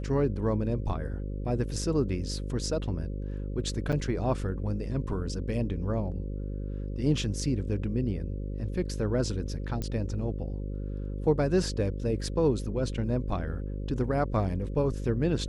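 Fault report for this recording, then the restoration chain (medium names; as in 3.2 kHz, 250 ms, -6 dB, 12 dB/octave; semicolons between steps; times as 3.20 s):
buzz 50 Hz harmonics 11 -34 dBFS
3.92–3.93 s: dropout 6.8 ms
9.82 s: pop -20 dBFS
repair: de-click; de-hum 50 Hz, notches 11; interpolate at 3.92 s, 6.8 ms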